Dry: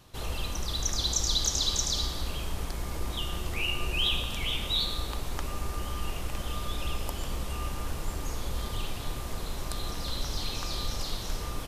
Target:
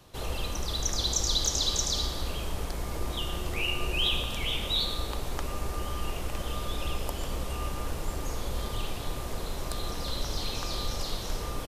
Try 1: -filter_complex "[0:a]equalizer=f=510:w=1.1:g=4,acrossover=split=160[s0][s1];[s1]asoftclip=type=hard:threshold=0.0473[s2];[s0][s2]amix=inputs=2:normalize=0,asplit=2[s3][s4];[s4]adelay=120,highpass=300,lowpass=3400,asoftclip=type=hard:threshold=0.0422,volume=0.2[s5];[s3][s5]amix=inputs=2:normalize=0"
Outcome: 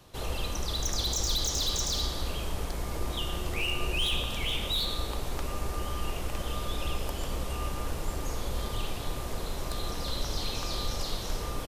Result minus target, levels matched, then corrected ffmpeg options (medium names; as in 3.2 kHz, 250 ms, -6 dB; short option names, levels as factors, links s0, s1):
hard clipper: distortion +27 dB
-filter_complex "[0:a]equalizer=f=510:w=1.1:g=4,acrossover=split=160[s0][s1];[s1]asoftclip=type=hard:threshold=0.141[s2];[s0][s2]amix=inputs=2:normalize=0,asplit=2[s3][s4];[s4]adelay=120,highpass=300,lowpass=3400,asoftclip=type=hard:threshold=0.0422,volume=0.2[s5];[s3][s5]amix=inputs=2:normalize=0"